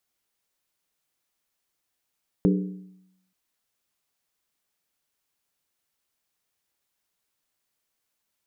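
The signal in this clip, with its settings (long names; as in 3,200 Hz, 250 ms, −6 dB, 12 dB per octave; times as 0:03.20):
struck skin length 0.88 s, lowest mode 186 Hz, decay 0.86 s, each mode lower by 4 dB, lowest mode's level −16 dB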